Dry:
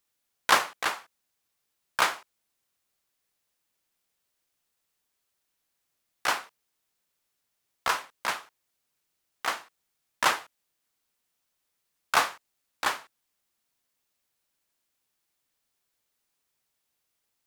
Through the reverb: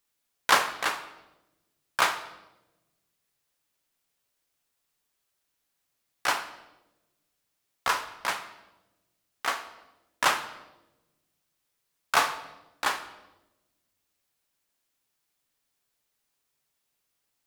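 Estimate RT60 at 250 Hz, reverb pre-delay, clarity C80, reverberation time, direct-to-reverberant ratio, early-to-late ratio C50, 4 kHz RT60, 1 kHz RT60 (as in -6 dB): 1.5 s, 7 ms, 14.5 dB, 1.0 s, 8.0 dB, 11.5 dB, 0.80 s, 0.90 s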